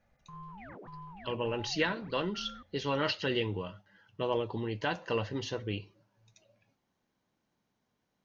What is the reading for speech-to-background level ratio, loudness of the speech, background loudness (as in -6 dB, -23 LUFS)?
14.5 dB, -34.0 LUFS, -48.5 LUFS